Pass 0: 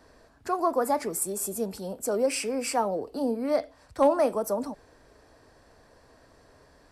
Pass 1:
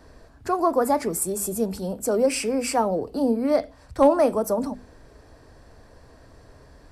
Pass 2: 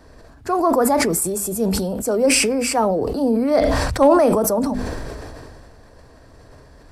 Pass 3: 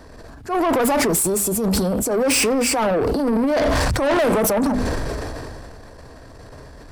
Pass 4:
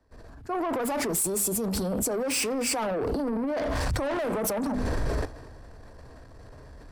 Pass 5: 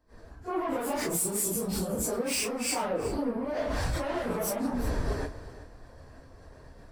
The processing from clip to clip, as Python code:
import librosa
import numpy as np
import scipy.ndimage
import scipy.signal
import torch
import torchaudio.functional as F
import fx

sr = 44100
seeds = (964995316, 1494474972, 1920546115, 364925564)

y1 = fx.low_shelf(x, sr, hz=200.0, db=11.0)
y1 = fx.hum_notches(y1, sr, base_hz=50, count=5)
y1 = y1 * librosa.db_to_amplitude(3.0)
y2 = fx.sustainer(y1, sr, db_per_s=23.0)
y2 = y2 * librosa.db_to_amplitude(2.5)
y3 = fx.transient(y2, sr, attack_db=-11, sustain_db=5)
y3 = 10.0 ** (-21.0 / 20.0) * np.tanh(y3 / 10.0 ** (-21.0 / 20.0))
y3 = y3 * librosa.db_to_amplitude(5.5)
y4 = fx.level_steps(y3, sr, step_db=14)
y4 = fx.band_widen(y4, sr, depth_pct=40)
y5 = fx.phase_scramble(y4, sr, seeds[0], window_ms=100)
y5 = y5 + 10.0 ** (-15.5 / 20.0) * np.pad(y5, (int(374 * sr / 1000.0), 0))[:len(y5)]
y5 = y5 * librosa.db_to_amplitude(-2.5)